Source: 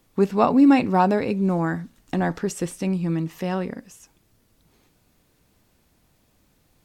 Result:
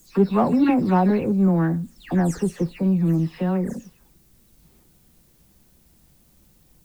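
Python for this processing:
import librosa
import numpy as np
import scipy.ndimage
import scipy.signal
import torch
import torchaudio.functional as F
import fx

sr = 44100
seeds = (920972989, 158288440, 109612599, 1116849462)

p1 = fx.spec_delay(x, sr, highs='early', ms=252)
p2 = fx.low_shelf(p1, sr, hz=410.0, db=11.0)
p3 = 10.0 ** (-16.5 / 20.0) * np.tanh(p2 / 10.0 ** (-16.5 / 20.0))
p4 = p2 + (p3 * librosa.db_to_amplitude(-6.0))
p5 = fx.dmg_noise_colour(p4, sr, seeds[0], colour='blue', level_db=-55.0)
y = p5 * librosa.db_to_amplitude(-6.5)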